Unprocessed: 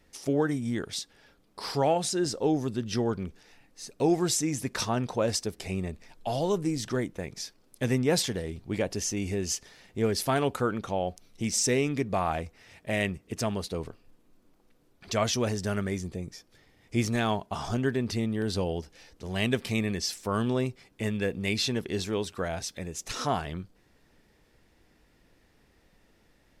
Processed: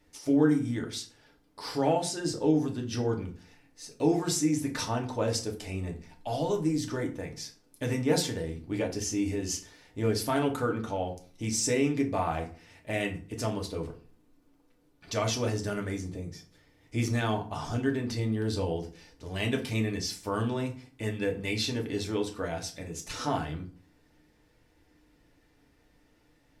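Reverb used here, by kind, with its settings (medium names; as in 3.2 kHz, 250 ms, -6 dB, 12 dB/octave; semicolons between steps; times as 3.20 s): FDN reverb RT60 0.41 s, low-frequency decay 1.35×, high-frequency decay 0.7×, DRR 1 dB; trim -4.5 dB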